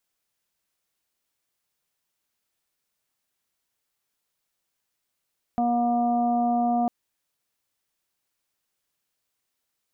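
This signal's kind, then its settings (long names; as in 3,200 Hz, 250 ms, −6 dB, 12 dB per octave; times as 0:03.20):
steady harmonic partials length 1.30 s, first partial 239 Hz, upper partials −17/1/−18.5/−18 dB, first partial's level −23.5 dB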